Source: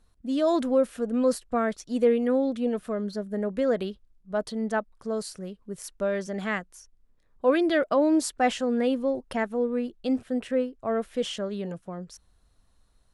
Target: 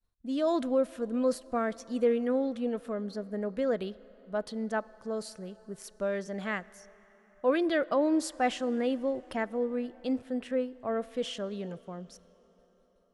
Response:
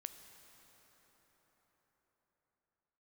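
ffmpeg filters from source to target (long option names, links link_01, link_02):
-filter_complex "[0:a]agate=range=-33dB:threshold=-53dB:ratio=3:detection=peak,asplit=2[link_01][link_02];[1:a]atrim=start_sample=2205,lowpass=7100,lowshelf=frequency=220:gain=-8.5[link_03];[link_02][link_03]afir=irnorm=-1:irlink=0,volume=-4.5dB[link_04];[link_01][link_04]amix=inputs=2:normalize=0,volume=-6.5dB"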